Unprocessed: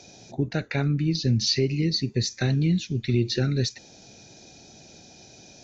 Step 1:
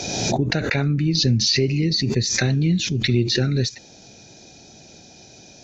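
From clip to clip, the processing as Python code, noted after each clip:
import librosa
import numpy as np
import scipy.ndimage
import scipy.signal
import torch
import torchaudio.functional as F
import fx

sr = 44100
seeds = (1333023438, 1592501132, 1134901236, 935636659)

y = fx.pre_swell(x, sr, db_per_s=31.0)
y = F.gain(torch.from_numpy(y), 3.0).numpy()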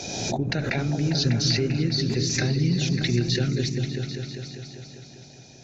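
y = fx.echo_opening(x, sr, ms=198, hz=200, octaves=2, feedback_pct=70, wet_db=-3)
y = F.gain(torch.from_numpy(y), -5.5).numpy()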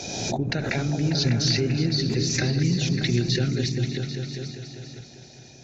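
y = fx.reverse_delay(x, sr, ms=501, wet_db=-12)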